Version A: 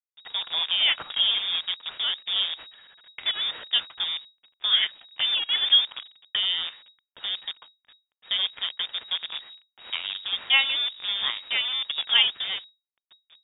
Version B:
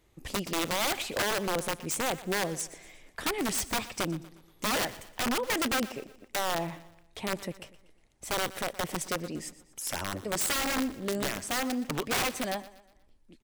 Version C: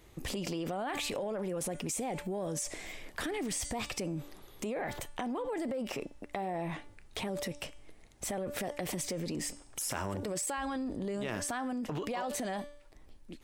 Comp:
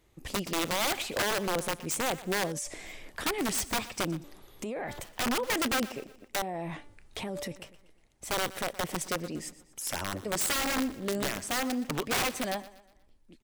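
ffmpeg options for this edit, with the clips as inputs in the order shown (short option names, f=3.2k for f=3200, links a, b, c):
-filter_complex "[2:a]asplit=3[a][b][c];[1:a]asplit=4[d][e][f][g];[d]atrim=end=2.522[h];[a]atrim=start=2.518:end=3.242[i];[e]atrim=start=3.238:end=4.242[j];[b]atrim=start=4.238:end=5.042[k];[f]atrim=start=5.038:end=6.422[l];[c]atrim=start=6.418:end=7.562[m];[g]atrim=start=7.558[n];[h][i]acrossfade=d=0.004:c1=hsin:c2=hsin[o];[o][j]acrossfade=d=0.004:c1=hsin:c2=hsin[p];[p][k]acrossfade=d=0.004:c1=hsin:c2=hsin[q];[q][l]acrossfade=d=0.004:c1=hsin:c2=hsin[r];[r][m]acrossfade=d=0.004:c1=hsin:c2=hsin[s];[s][n]acrossfade=d=0.004:c1=hsin:c2=hsin"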